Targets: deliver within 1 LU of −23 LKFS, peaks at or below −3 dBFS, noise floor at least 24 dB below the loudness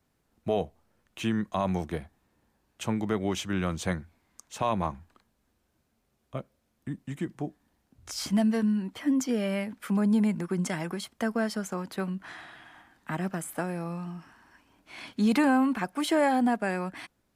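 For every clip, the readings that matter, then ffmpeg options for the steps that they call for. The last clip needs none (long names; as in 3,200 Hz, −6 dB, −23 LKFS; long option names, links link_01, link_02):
integrated loudness −29.5 LKFS; sample peak −15.0 dBFS; target loudness −23.0 LKFS
→ -af "volume=6.5dB"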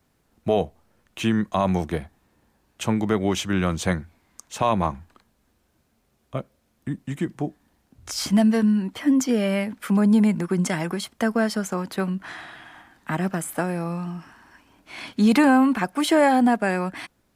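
integrated loudness −23.0 LKFS; sample peak −8.5 dBFS; background noise floor −68 dBFS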